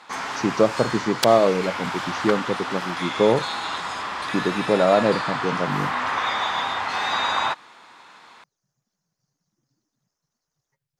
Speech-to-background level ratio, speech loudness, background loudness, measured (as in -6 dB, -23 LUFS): 4.0 dB, -22.5 LUFS, -26.5 LUFS